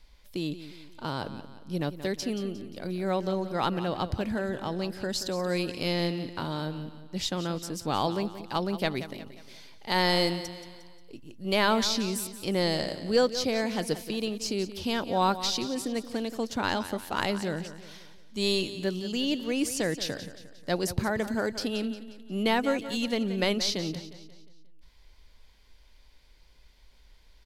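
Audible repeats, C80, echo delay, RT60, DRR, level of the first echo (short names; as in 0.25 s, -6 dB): 4, none, 0.178 s, none, none, -13.0 dB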